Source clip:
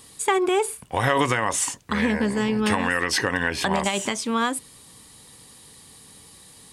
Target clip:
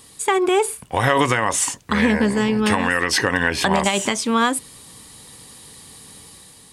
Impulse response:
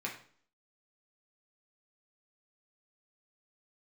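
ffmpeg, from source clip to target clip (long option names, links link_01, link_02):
-af "dynaudnorm=framelen=100:gausssize=9:maxgain=4dB,volume=1.5dB"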